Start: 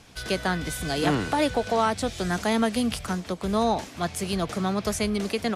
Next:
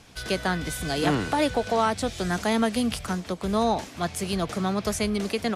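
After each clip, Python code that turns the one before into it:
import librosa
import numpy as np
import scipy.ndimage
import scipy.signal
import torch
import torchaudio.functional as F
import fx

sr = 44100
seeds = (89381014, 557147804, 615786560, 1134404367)

y = x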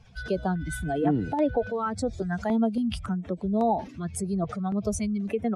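y = fx.spec_expand(x, sr, power=2.0)
y = fx.filter_held_notch(y, sr, hz=3.6, low_hz=300.0, high_hz=7300.0)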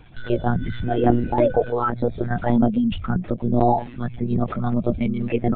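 y = fx.lpc_monotone(x, sr, seeds[0], pitch_hz=120.0, order=16)
y = y * librosa.db_to_amplitude(6.5)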